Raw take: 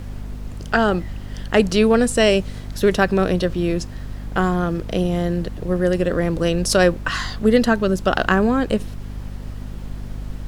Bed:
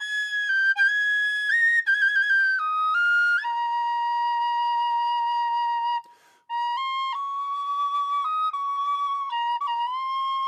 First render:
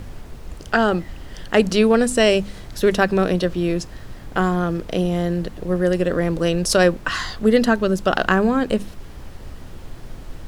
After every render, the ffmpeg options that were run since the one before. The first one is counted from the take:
-af "bandreject=f=50:t=h:w=4,bandreject=f=100:t=h:w=4,bandreject=f=150:t=h:w=4,bandreject=f=200:t=h:w=4,bandreject=f=250:t=h:w=4"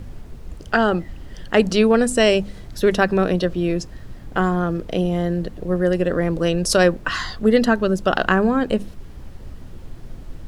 -af "afftdn=nr=6:nf=-38"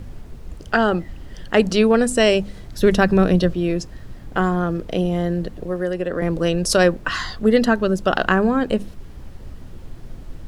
-filter_complex "[0:a]asettb=1/sr,asplit=3[a][b][c];[a]atrim=end=2.804[d];[b]atrim=start=2.8:end=3.52,asetpts=PTS-STARTPTS,afade=t=in:d=0.004:c=qsin,afade=t=out:st=0.716:d=0.004:c=qsin,bass=f=250:g=7,treble=f=4k:g=2[e];[c]atrim=start=3.516[f];[d][e]acrossfade=d=0.004:c1=hsin:c2=qsin[g];[g][f]acrossfade=d=0.004:c1=qsin:c2=hsin,asettb=1/sr,asplit=3[h][i][j];[h]atrim=end=5.624[k];[i]atrim=start=5.62:end=6.22,asetpts=PTS-STARTPTS,afade=t=in:d=0.004:c=qsin,afade=t=out:st=0.596:d=0.004:c=qsin,acrossover=split=300|3100[l][m][n];[l]acompressor=threshold=-31dB:ratio=4[o];[m]acompressor=threshold=-21dB:ratio=4[p];[n]acompressor=threshold=-49dB:ratio=4[q];[o][p][q]amix=inputs=3:normalize=0[r];[j]atrim=start=6.216[s];[k][r]acrossfade=d=0.004:c1=hsin:c2=qsin[t];[t][s]acrossfade=d=0.004:c1=qsin:c2=hsin"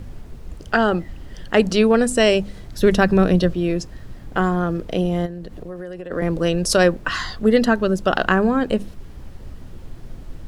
-filter_complex "[0:a]asplit=3[a][b][c];[a]afade=t=out:st=5.25:d=0.02[d];[b]acompressor=threshold=-29dB:ratio=5:attack=3.2:release=140:knee=1:detection=peak,afade=t=in:st=5.25:d=0.02,afade=t=out:st=6.1:d=0.02[e];[c]afade=t=in:st=6.1:d=0.02[f];[d][e][f]amix=inputs=3:normalize=0"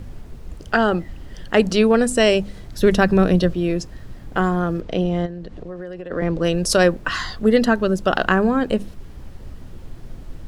-filter_complex "[0:a]asplit=3[a][b][c];[a]afade=t=out:st=4.8:d=0.02[d];[b]lowpass=5.9k,afade=t=in:st=4.8:d=0.02,afade=t=out:st=6.43:d=0.02[e];[c]afade=t=in:st=6.43:d=0.02[f];[d][e][f]amix=inputs=3:normalize=0"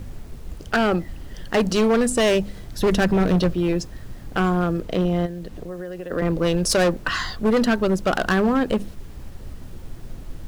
-af "acrusher=bits=8:mix=0:aa=0.000001,asoftclip=type=hard:threshold=-14.5dB"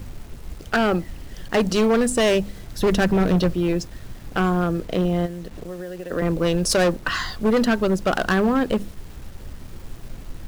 -af "acrusher=bits=7:mix=0:aa=0.000001"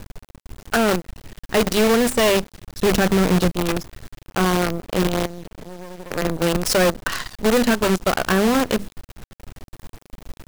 -af "acrusher=bits=4:dc=4:mix=0:aa=0.000001"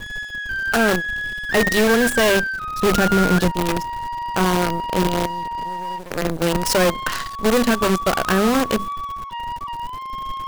-filter_complex "[1:a]volume=-3dB[a];[0:a][a]amix=inputs=2:normalize=0"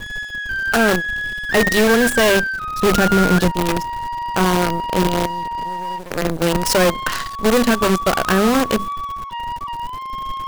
-af "volume=2dB"

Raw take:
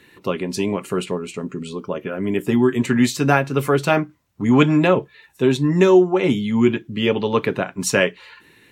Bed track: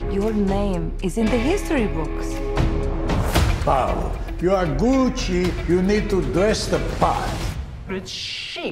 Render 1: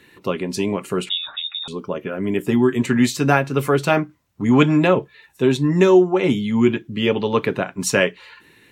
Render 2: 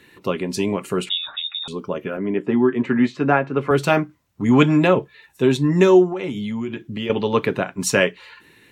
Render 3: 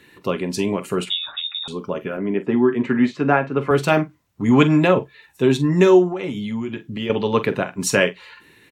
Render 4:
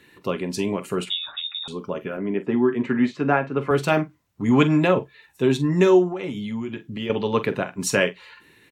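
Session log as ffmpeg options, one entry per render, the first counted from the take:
-filter_complex "[0:a]asettb=1/sr,asplit=3[a][b][c];[a]atrim=end=1.094[d];[b]atrim=start=1.09:end=1.68,asetpts=PTS-STARTPTS,afade=t=in:d=0.004:c=qsin,afade=t=out:st=0.586:d=0.004:c=qsin,lowpass=f=3.3k:t=q:w=0.5098,lowpass=f=3.3k:t=q:w=0.6013,lowpass=f=3.3k:t=q:w=0.9,lowpass=f=3.3k:t=q:w=2.563,afreqshift=-3900[e];[c]atrim=start=1.676[f];[d][e]acrossfade=d=0.004:c1=hsin:c2=qsin[g];[g][f]acrossfade=d=0.004:c1=qsin:c2=hsin"
-filter_complex "[0:a]asettb=1/sr,asplit=3[a][b][c];[a]atrim=end=2.174[d];[b]atrim=start=2.17:end=3.71,asetpts=PTS-STARTPTS,afade=t=in:d=0.004:c=qsin,afade=t=out:st=1.536:d=0.004:c=qsin,highpass=170,lowpass=2k[e];[c]atrim=start=3.706[f];[d][e]acrossfade=d=0.004:c1=hsin:c2=qsin[g];[g][f]acrossfade=d=0.004:c1=qsin:c2=hsin,asettb=1/sr,asplit=3[h][i][j];[h]atrim=end=6.124[k];[i]atrim=start=6.12:end=7.1,asetpts=PTS-STARTPTS,afade=t=in:d=0.004:c=qsin,afade=t=out:st=0.976:d=0.004:c=qsin,acompressor=threshold=-23dB:ratio=6:attack=3.2:release=140:knee=1:detection=peak[l];[j]atrim=start=7.096[m];[k][l]acrossfade=d=0.004:c1=hsin:c2=qsin[n];[n][m]acrossfade=d=0.004:c1=qsin:c2=hsin"
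-filter_complex "[0:a]asplit=2[a][b];[b]adelay=45,volume=-14dB[c];[a][c]amix=inputs=2:normalize=0"
-af "volume=-3dB"

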